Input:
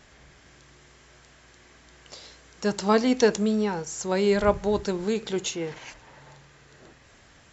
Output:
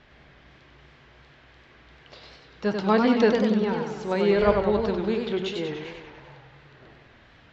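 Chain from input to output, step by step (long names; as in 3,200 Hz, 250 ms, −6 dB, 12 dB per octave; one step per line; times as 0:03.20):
low-pass filter 3,900 Hz 24 dB per octave
hum removal 90.47 Hz, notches 27
feedback echo with a swinging delay time 97 ms, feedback 61%, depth 146 cents, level −5 dB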